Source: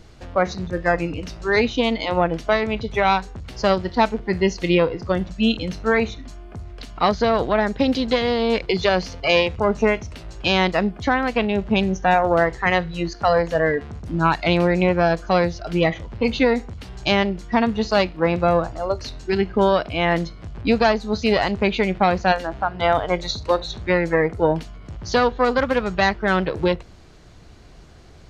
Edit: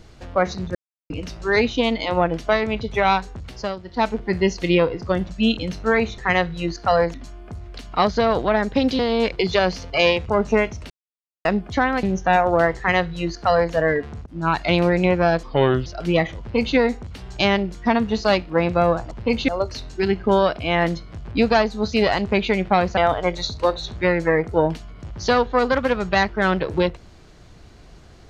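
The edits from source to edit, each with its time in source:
0.75–1.10 s: mute
3.46–4.12 s: dip -11.5 dB, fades 0.26 s
8.03–8.29 s: delete
10.20–10.75 s: mute
11.33–11.81 s: delete
12.55–13.51 s: copy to 6.18 s
14.04–14.48 s: fade in equal-power, from -24 dB
15.21–15.53 s: speed 74%
16.06–16.43 s: copy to 18.78 s
22.27–22.83 s: delete

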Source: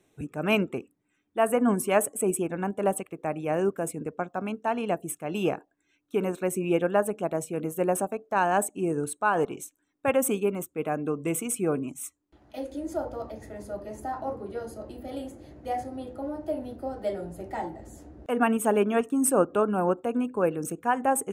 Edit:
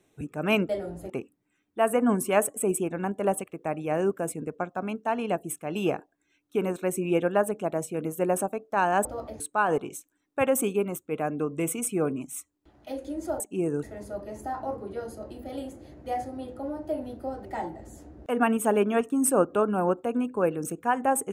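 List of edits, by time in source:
8.64–9.07 s: swap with 13.07–13.42 s
17.04–17.45 s: move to 0.69 s

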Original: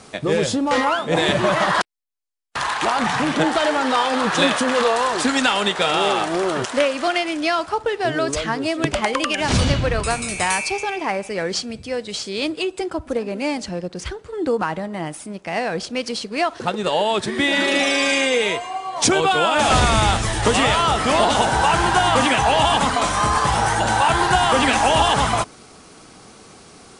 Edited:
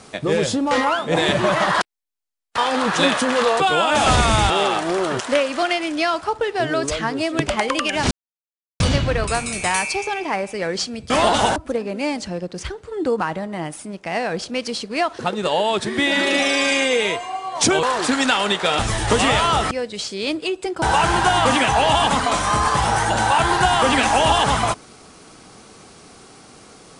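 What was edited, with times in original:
2.58–3.97 s: delete
4.99–5.95 s: swap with 19.24–20.14 s
9.56 s: insert silence 0.69 s
11.86–12.97 s: swap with 21.06–21.52 s

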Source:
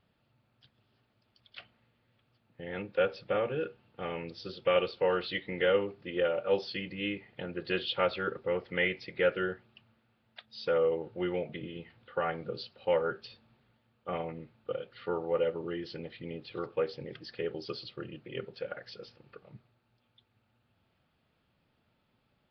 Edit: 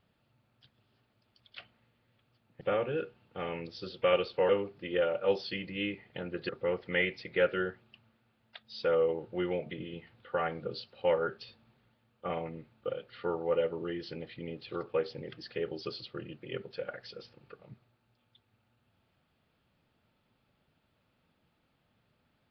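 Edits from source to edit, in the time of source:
2.61–3.24 s: delete
5.12–5.72 s: delete
7.72–8.32 s: delete

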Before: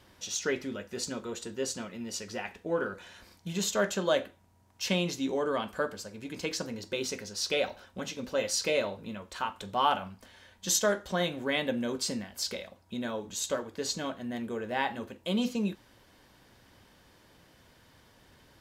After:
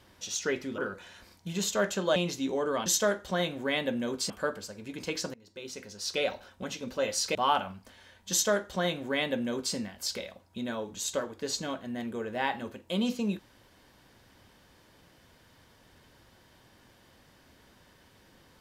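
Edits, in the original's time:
0.78–2.78 s: delete
4.16–4.96 s: delete
6.70–7.66 s: fade in, from -24 dB
8.71–9.71 s: delete
10.67–12.11 s: copy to 5.66 s

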